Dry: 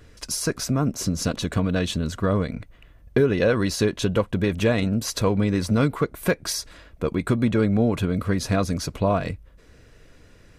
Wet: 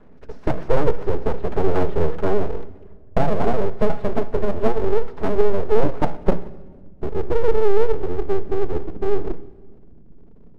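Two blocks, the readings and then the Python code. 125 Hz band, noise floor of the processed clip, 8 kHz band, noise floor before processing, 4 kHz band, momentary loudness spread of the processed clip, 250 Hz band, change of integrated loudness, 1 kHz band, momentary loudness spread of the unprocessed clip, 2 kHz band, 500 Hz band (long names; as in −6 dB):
−4.5 dB, −43 dBFS, below −20 dB, −52 dBFS, below −10 dB, 10 LU, −5.0 dB, 0.0 dB, +4.0 dB, 7 LU, −5.5 dB, +4.0 dB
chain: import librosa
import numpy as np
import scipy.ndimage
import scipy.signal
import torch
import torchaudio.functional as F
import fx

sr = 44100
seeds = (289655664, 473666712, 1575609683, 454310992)

y = fx.env_lowpass_down(x, sr, base_hz=420.0, full_db=-15.5)
y = fx.peak_eq(y, sr, hz=240.0, db=10.0, octaves=0.77)
y = fx.hum_notches(y, sr, base_hz=60, count=7)
y = y + 0.95 * np.pad(y, (int(4.8 * sr / 1000.0), 0))[:len(y)]
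y = fx.rider(y, sr, range_db=10, speed_s=2.0)
y = fx.rotary_switch(y, sr, hz=0.9, then_hz=7.0, switch_at_s=2.3)
y = fx.filter_sweep_lowpass(y, sr, from_hz=1000.0, to_hz=180.0, start_s=5.55, end_s=6.95, q=1.3)
y = np.abs(y)
y = fx.echo_wet_highpass(y, sr, ms=63, feedback_pct=72, hz=1900.0, wet_db=-23.5)
y = fx.room_shoebox(y, sr, seeds[0], volume_m3=1700.0, walls='mixed', distance_m=0.3)
y = y * 10.0 ** (-1.0 / 20.0)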